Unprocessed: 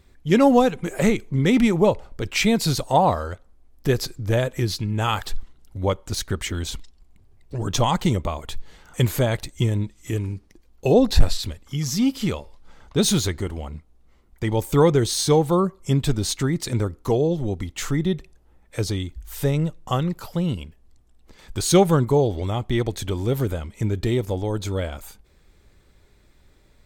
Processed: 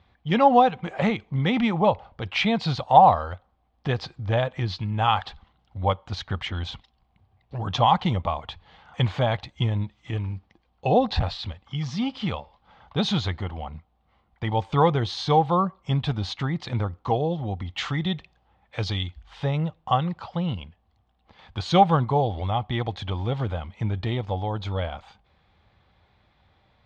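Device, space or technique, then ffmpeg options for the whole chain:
guitar cabinet: -filter_complex "[0:a]highpass=76,equalizer=frequency=90:width_type=q:width=4:gain=4,equalizer=frequency=280:width_type=q:width=4:gain=-6,equalizer=frequency=390:width_type=q:width=4:gain=-9,equalizer=frequency=780:width_type=q:width=4:gain=10,equalizer=frequency=1100:width_type=q:width=4:gain=5,equalizer=frequency=3200:width_type=q:width=4:gain=4,lowpass=frequency=4100:width=0.5412,lowpass=frequency=4100:width=1.3066,asettb=1/sr,asplit=3[link_01][link_02][link_03];[link_01]atrim=end=17.634[link_04];[link_02]atrim=start=17.63:end=19.22,asetpts=PTS-STARTPTS,afade=type=in:duration=0.004:curve=qsin,afade=type=out:start_time=1.586:duration=0.004:curve=qsin,adynamicequalizer=threshold=0.00447:dfrequency=1700:dqfactor=0.7:tfrequency=1700:tqfactor=0.7:attack=5:release=100:ratio=0.375:range=3.5:mode=boostabove:tftype=highshelf[link_05];[link_03]atrim=start=19.216[link_06];[link_04][link_05]acrossfade=duration=0.004:curve1=hsin:curve2=qsin[link_07];[link_07][link_06]acrossfade=duration=0.004:curve1=qsin:curve2=hsin,volume=-2.5dB"

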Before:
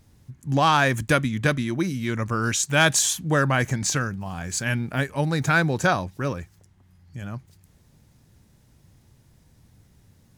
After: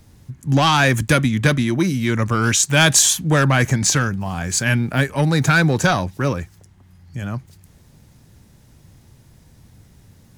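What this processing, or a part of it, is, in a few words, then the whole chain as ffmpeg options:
one-band saturation: -filter_complex "[0:a]acrossover=split=240|2000[link_01][link_02][link_03];[link_02]asoftclip=type=tanh:threshold=-22dB[link_04];[link_01][link_04][link_03]amix=inputs=3:normalize=0,volume=7.5dB"

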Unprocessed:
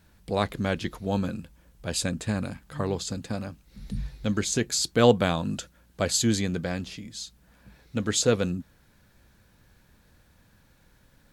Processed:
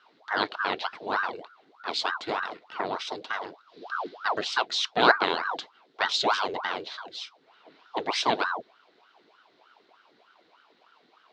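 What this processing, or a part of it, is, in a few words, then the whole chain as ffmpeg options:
voice changer toy: -af "aeval=exprs='val(0)*sin(2*PI*810*n/s+810*0.75/3.3*sin(2*PI*3.3*n/s))':channel_layout=same,highpass=450,equalizer=frequency=550:width_type=q:width=4:gain=-7,equalizer=frequency=830:width_type=q:width=4:gain=-3,equalizer=frequency=1200:width_type=q:width=4:gain=-6,equalizer=frequency=1800:width_type=q:width=4:gain=-4,equalizer=frequency=2500:width_type=q:width=4:gain=-4,equalizer=frequency=4000:width_type=q:width=4:gain=5,lowpass=frequency=4200:width=0.5412,lowpass=frequency=4200:width=1.3066,volume=6.5dB"

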